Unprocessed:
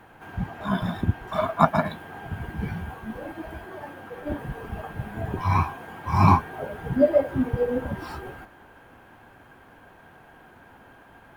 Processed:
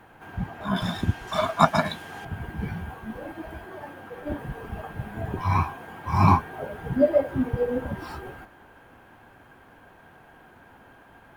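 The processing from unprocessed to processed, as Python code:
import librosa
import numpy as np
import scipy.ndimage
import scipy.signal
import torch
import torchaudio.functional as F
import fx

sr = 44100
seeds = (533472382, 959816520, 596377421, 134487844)

y = fx.peak_eq(x, sr, hz=6000.0, db=14.0, octaves=2.1, at=(0.76, 2.25))
y = y * librosa.db_to_amplitude(-1.0)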